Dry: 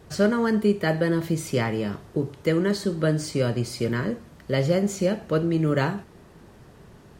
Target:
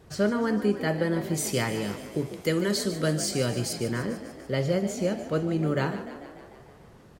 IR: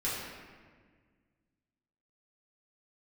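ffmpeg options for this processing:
-filter_complex "[0:a]asettb=1/sr,asplit=3[s0][s1][s2];[s0]atrim=end=1.344[s3];[s1]atrim=start=1.34:end=3.73,asetpts=PTS-STARTPTS,afade=t=in:d=0.004:c=qsin,afade=t=out:st=2.386:d=0.004:c=qsin,highshelf=f=3300:g=12[s4];[s2]atrim=start=3.726[s5];[s3][s4]acrossfade=d=0.004:c1=hsin:c2=qsin[s6];[s6][s5]acrossfade=d=0.004:c1=qsin:c2=hsin,asplit=9[s7][s8][s9][s10][s11][s12][s13][s14][s15];[s8]adelay=148,afreqshift=48,volume=0.237[s16];[s9]adelay=296,afreqshift=96,volume=0.151[s17];[s10]adelay=444,afreqshift=144,volume=0.0966[s18];[s11]adelay=592,afreqshift=192,volume=0.0624[s19];[s12]adelay=740,afreqshift=240,volume=0.0398[s20];[s13]adelay=888,afreqshift=288,volume=0.0254[s21];[s14]adelay=1036,afreqshift=336,volume=0.0162[s22];[s15]adelay=1184,afreqshift=384,volume=0.0105[s23];[s7][s16][s17][s18][s19][s20][s21][s22][s23]amix=inputs=9:normalize=0,volume=0.631"

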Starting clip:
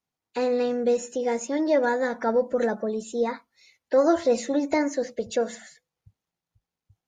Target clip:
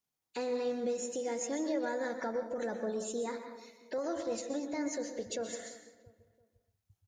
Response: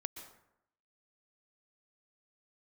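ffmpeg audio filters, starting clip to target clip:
-filter_complex "[0:a]asettb=1/sr,asplit=3[s0][s1][s2];[s0]atrim=end=3.984[s3];[s1]atrim=start=3.98:end=4.83,asetpts=PTS-STARTPTS,afade=t=in:d=0.004:c=qsin,afade=t=out:st=0.846:d=0.004:c=qsin,agate=range=0.316:threshold=0.0501:ratio=16:detection=peak[s4];[s2]atrim=start=4.826[s5];[s3][s4]acrossfade=d=0.004:c1=hsin:c2=qsin[s6];[s6][s5]acrossfade=d=0.004:c1=qsin:c2=hsin,highshelf=f=5200:g=10,alimiter=limit=0.0794:level=0:latency=1:release=221,asplit=2[s7][s8];[s8]adelay=338,lowpass=f=1400:p=1,volume=0.15,asplit=2[s9][s10];[s10]adelay=338,lowpass=f=1400:p=1,volume=0.4,asplit=2[s11][s12];[s12]adelay=338,lowpass=f=1400:p=1,volume=0.4[s13];[s7][s9][s11][s13]amix=inputs=4:normalize=0[s14];[1:a]atrim=start_sample=2205,afade=t=out:st=0.33:d=0.01,atrim=end_sample=14994[s15];[s14][s15]afir=irnorm=-1:irlink=0,volume=0.668"

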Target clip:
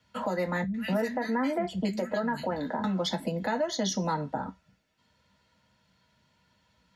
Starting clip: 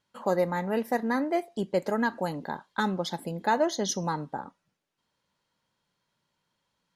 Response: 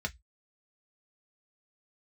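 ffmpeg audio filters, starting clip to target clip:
-filter_complex "[0:a]asettb=1/sr,asplit=3[s0][s1][s2];[s0]atrim=end=0.634[s3];[s1]atrim=start=0.63:end=2.84,asetpts=PTS-STARTPTS,afade=t=in:d=0.004:c=qsin,afade=t=out:st=2.206:d=0.004:c=qsin,acrossover=split=180|2000[s4][s5][s6];[s6]adelay=110[s7];[s5]adelay=250[s8];[s4][s8][s7]amix=inputs=3:normalize=0,atrim=end_sample=97461[s9];[s2]atrim=start=2.836[s10];[s3][s9]acrossfade=d=0.004:c1=hsin:c2=qsin[s11];[s11][s10]acrossfade=d=0.004:c1=qsin:c2=hsin[s12];[1:a]atrim=start_sample=2205,asetrate=43659,aresample=44100[s13];[s12][s13]afir=irnorm=-1:irlink=0,acrossover=split=160|820[s14][s15][s16];[s14]acompressor=threshold=0.00501:ratio=4[s17];[s15]acompressor=threshold=0.0355:ratio=4[s18];[s16]acompressor=threshold=0.0316:ratio=4[s19];[s17][s18][s19]amix=inputs=3:normalize=0,alimiter=level_in=1.26:limit=0.0631:level=0:latency=1:release=327,volume=0.794,volume=2.11"

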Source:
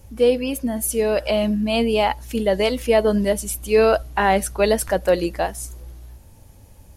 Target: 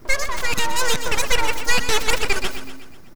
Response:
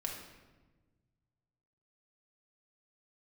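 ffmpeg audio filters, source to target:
-af "equalizer=f=2400:w=6:g=8,aeval=exprs='abs(val(0))':c=same,asetrate=97461,aresample=44100,aecho=1:1:124|248|372|496|620|744:0.299|0.158|0.0839|0.0444|0.0236|0.0125,volume=1.12"

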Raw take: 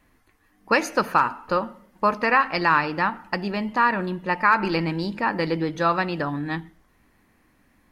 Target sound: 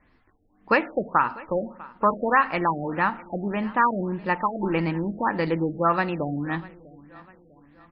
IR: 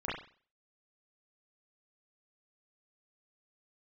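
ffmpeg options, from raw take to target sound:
-filter_complex "[0:a]asettb=1/sr,asplit=3[s0][s1][s2];[s0]atrim=end=0.814[s3];[s1]atrim=start=0.81:end=1.55,asetpts=PTS-STARTPTS,afade=t=in:d=0.004:c=qsin,afade=t=out:st=0.736:d=0.004:c=qsin,aeval=exprs='0.501*(cos(1*acos(clip(val(0)/0.501,-1,1)))-cos(1*PI/2))+0.0355*(cos(3*acos(clip(val(0)/0.501,-1,1)))-cos(3*PI/2))':c=same[s4];[s2]atrim=start=1.546[s5];[s3][s4]acrossfade=d=0.004:c1=hsin:c2=qsin[s6];[s6][s5]acrossfade=d=0.004:c1=qsin:c2=hsin,acrossover=split=3400[s7][s8];[s8]acompressor=threshold=0.00316:ratio=4:attack=1:release=60[s9];[s7][s9]amix=inputs=2:normalize=0,asplit=2[s10][s11];[s11]aecho=0:1:648|1296|1944:0.0841|0.0387|0.0178[s12];[s10][s12]amix=inputs=2:normalize=0,afftfilt=real='re*lt(b*sr/1024,740*pow(5600/740,0.5+0.5*sin(2*PI*1.7*pts/sr)))':imag='im*lt(b*sr/1024,740*pow(5600/740,0.5+0.5*sin(2*PI*1.7*pts/sr)))':win_size=1024:overlap=0.75"

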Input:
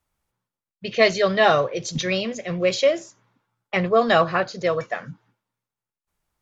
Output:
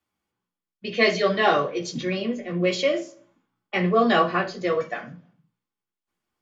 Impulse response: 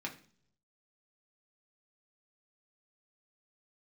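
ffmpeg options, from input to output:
-filter_complex "[0:a]asettb=1/sr,asplit=3[s0][s1][s2];[s0]atrim=end=1.984[s3];[s1]atrim=start=1.98:end=2.64,asetpts=PTS-STARTPTS,afade=t=in:d=0.004:c=qsin,afade=t=out:st=0.656:d=0.004:c=qsin,highshelf=f=2800:g=-11.5[s4];[s2]atrim=start=2.636[s5];[s3][s4]acrossfade=d=0.004:c1=hsin:c2=qsin[s6];[s6][s5]acrossfade=d=0.004:c1=qsin:c2=hsin[s7];[1:a]atrim=start_sample=2205,asetrate=57330,aresample=44100[s8];[s7][s8]afir=irnorm=-1:irlink=0"

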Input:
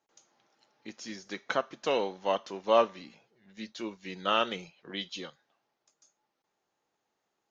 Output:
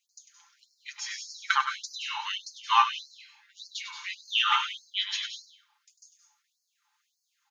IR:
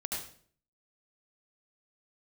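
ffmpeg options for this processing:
-filter_complex "[0:a]aecho=1:1:5.8:0.77,asplit=2[s0][s1];[1:a]atrim=start_sample=2205,adelay=98[s2];[s1][s2]afir=irnorm=-1:irlink=0,volume=0.447[s3];[s0][s3]amix=inputs=2:normalize=0,afftfilt=real='re*gte(b*sr/1024,760*pow(4200/760,0.5+0.5*sin(2*PI*1.7*pts/sr)))':imag='im*gte(b*sr/1024,760*pow(4200/760,0.5+0.5*sin(2*PI*1.7*pts/sr)))':win_size=1024:overlap=0.75,volume=2.11"

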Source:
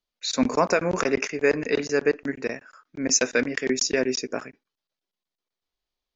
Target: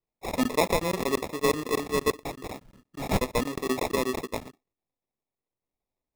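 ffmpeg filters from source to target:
-filter_complex "[0:a]acrusher=samples=29:mix=1:aa=0.000001,asettb=1/sr,asplit=3[s0][s1][s2];[s0]atrim=end=2.104[s3];[s1]atrim=start=2.1:end=3.08,asetpts=PTS-STARTPTS,afade=t=in:d=0.004:c=qsin,afade=t=out:st=0.976:d=0.004:c=qsin,aeval=exprs='(mod(17.8*val(0)+1,2)-1)/17.8':c=same[s4];[s2]atrim=start=3.076[s5];[s3][s4]acrossfade=d=0.004:c1=hsin:c2=qsin[s6];[s6][s5]acrossfade=d=0.004:c1=qsin:c2=hsin,volume=0.668"

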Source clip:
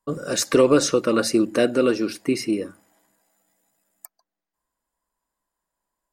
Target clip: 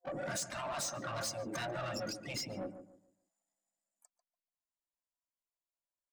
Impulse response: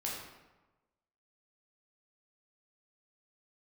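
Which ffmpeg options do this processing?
-filter_complex "[0:a]afftdn=nr=25:nf=-31,lowpass=f=10000:w=0.5412,lowpass=f=10000:w=1.3066,afftfilt=real='re*lt(hypot(re,im),0.2)':imag='im*lt(hypot(re,im),0.2)':win_size=1024:overlap=0.75,superequalizer=7b=0.251:8b=2:12b=0.562:14b=1.78:15b=2.82,acompressor=threshold=0.0224:ratio=3,asoftclip=type=tanh:threshold=0.0178,asplit=2[s0][s1];[s1]asetrate=58866,aresample=44100,atempo=0.749154,volume=0.316[s2];[s0][s2]amix=inputs=2:normalize=0,asplit=2[s3][s4];[s4]adelay=144,lowpass=f=1200:p=1,volume=0.316,asplit=2[s5][s6];[s6]adelay=144,lowpass=f=1200:p=1,volume=0.32,asplit=2[s7][s8];[s8]adelay=144,lowpass=f=1200:p=1,volume=0.32,asplit=2[s9][s10];[s10]adelay=144,lowpass=f=1200:p=1,volume=0.32[s11];[s3][s5][s7][s9][s11]amix=inputs=5:normalize=0"

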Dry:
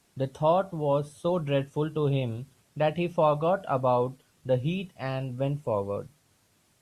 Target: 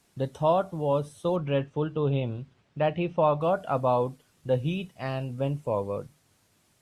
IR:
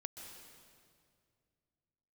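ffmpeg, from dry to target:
-filter_complex "[0:a]asettb=1/sr,asplit=3[s0][s1][s2];[s0]atrim=end=1.364[s3];[s1]atrim=start=1.36:end=3.41,asetpts=PTS-STARTPTS,afade=t=in:d=0.004:c=qsin,afade=t=out:st=2.046:d=0.004:c=qsin,lowpass=3500[s4];[s2]atrim=start=3.406[s5];[s3][s4]acrossfade=d=0.004:c1=hsin:c2=qsin[s6];[s6][s5]acrossfade=d=0.004:c1=qsin:c2=hsin"

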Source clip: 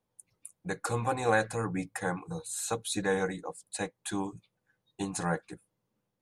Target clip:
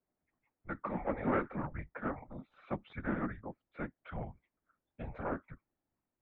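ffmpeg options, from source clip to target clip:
-af "afftfilt=real='hypot(re,im)*cos(2*PI*random(0))':imag='hypot(re,im)*sin(2*PI*random(1))':win_size=512:overlap=0.75,aeval=exprs='clip(val(0),-1,0.0211)':c=same,highpass=f=280:t=q:w=0.5412,highpass=f=280:t=q:w=1.307,lowpass=f=2500:t=q:w=0.5176,lowpass=f=2500:t=q:w=0.7071,lowpass=f=2500:t=q:w=1.932,afreqshift=-240,volume=1.33"

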